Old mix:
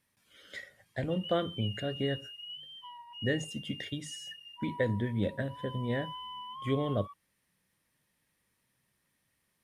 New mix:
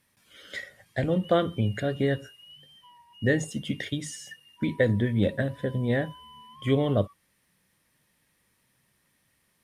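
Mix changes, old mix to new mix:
speech +7.0 dB; background -6.5 dB

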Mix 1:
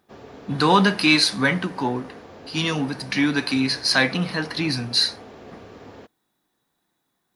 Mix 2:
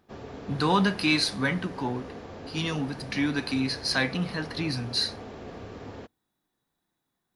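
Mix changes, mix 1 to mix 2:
speech -7.5 dB; master: add low shelf 130 Hz +8.5 dB

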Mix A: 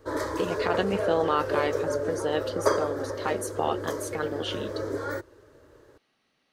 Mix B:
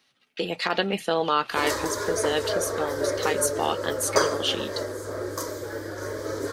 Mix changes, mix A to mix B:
background: entry +1.50 s; master: add high shelf 2100 Hz +12 dB

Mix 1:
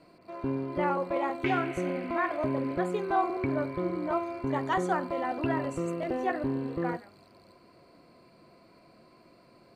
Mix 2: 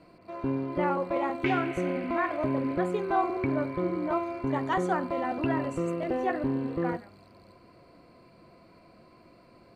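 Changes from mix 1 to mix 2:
speech: add tone controls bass +8 dB, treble -2 dB; reverb: on, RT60 0.75 s

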